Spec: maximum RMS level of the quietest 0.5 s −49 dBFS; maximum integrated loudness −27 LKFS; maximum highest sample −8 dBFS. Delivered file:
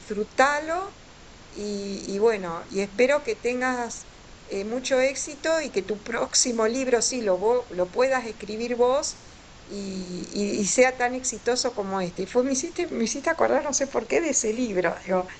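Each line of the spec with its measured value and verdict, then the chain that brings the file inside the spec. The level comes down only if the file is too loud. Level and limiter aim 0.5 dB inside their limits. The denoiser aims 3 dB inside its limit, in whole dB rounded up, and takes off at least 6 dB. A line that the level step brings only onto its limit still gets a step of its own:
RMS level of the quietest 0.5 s −47 dBFS: out of spec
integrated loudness −25.0 LKFS: out of spec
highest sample −5.0 dBFS: out of spec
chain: level −2.5 dB
brickwall limiter −8.5 dBFS

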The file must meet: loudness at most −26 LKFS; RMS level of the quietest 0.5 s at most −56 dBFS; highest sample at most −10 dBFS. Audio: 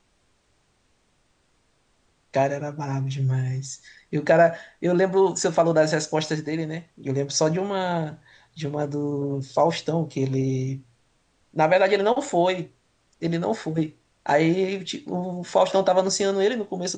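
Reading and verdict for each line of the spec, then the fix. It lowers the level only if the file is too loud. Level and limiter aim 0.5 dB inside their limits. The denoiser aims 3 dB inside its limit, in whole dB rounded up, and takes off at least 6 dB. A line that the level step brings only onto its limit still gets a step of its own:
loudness −24.0 LKFS: out of spec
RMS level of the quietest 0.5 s −66 dBFS: in spec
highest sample −6.5 dBFS: out of spec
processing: level −2.5 dB
brickwall limiter −10.5 dBFS

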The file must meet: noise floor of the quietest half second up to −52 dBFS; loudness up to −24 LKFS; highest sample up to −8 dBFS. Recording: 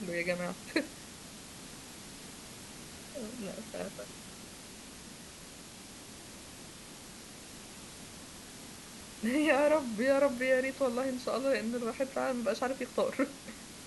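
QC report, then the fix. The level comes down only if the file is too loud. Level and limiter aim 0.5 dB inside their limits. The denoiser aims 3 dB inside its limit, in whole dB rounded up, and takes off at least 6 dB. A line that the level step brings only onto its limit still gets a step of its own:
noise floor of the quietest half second −49 dBFS: out of spec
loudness −32.5 LKFS: in spec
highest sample −14.5 dBFS: in spec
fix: broadband denoise 6 dB, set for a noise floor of −49 dBFS

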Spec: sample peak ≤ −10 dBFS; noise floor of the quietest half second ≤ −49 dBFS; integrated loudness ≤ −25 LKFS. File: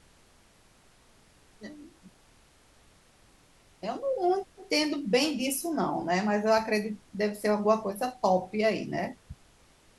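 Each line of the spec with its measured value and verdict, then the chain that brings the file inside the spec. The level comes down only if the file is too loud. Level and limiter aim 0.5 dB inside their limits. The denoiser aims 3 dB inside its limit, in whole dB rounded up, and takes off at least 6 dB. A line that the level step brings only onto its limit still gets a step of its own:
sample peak −11.0 dBFS: in spec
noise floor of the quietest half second −60 dBFS: in spec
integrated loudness −28.5 LKFS: in spec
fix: no processing needed

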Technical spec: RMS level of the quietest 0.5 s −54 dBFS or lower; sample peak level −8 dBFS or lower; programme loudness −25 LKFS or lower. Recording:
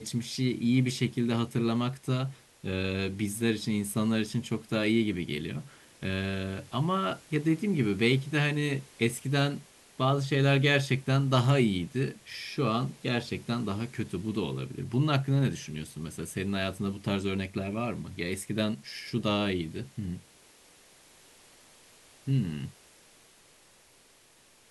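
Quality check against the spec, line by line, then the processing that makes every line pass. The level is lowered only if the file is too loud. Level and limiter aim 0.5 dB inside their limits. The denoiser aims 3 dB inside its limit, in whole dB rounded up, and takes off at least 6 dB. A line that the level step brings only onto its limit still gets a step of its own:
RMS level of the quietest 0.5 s −60 dBFS: in spec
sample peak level −10.5 dBFS: in spec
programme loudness −30.0 LKFS: in spec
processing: no processing needed

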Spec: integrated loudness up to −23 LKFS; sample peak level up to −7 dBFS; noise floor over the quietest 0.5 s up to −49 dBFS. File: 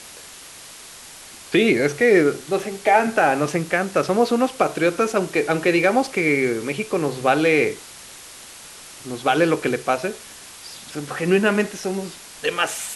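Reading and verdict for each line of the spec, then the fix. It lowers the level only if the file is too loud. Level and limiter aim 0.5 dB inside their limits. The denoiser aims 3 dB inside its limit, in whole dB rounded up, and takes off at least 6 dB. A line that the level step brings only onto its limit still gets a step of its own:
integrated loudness −20.0 LKFS: out of spec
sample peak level −5.0 dBFS: out of spec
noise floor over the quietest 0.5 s −41 dBFS: out of spec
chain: broadband denoise 8 dB, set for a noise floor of −41 dBFS
level −3.5 dB

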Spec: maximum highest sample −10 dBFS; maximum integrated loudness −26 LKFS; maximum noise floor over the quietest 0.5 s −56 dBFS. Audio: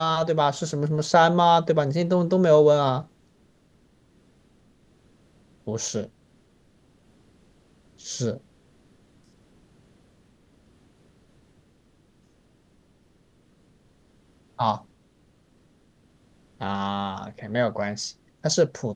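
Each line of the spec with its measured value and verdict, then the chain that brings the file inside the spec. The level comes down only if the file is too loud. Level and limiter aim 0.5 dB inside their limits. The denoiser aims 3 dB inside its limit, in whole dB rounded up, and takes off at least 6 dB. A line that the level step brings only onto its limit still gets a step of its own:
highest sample −5.0 dBFS: out of spec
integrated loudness −23.5 LKFS: out of spec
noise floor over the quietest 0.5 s −61 dBFS: in spec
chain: level −3 dB
brickwall limiter −10.5 dBFS

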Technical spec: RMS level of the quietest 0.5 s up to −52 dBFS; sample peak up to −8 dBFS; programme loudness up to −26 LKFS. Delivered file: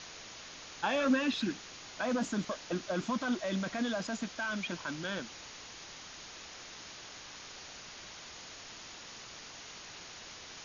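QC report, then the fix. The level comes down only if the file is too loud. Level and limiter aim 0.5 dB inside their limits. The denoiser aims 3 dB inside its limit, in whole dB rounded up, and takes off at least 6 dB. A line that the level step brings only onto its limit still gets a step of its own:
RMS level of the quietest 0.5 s −49 dBFS: out of spec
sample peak −19.0 dBFS: in spec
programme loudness −37.5 LKFS: in spec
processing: broadband denoise 6 dB, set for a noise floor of −49 dBFS

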